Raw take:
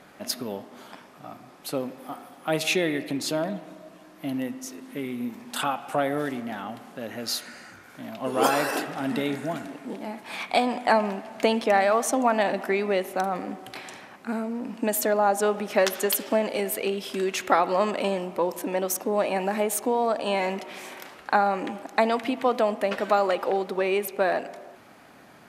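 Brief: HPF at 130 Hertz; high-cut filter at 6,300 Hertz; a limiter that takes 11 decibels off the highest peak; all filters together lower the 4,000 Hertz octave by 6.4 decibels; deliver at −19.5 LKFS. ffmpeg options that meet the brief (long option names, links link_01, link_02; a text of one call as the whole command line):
ffmpeg -i in.wav -af "highpass=130,lowpass=6300,equalizer=frequency=4000:width_type=o:gain=-8,volume=10.5dB,alimiter=limit=-7dB:level=0:latency=1" out.wav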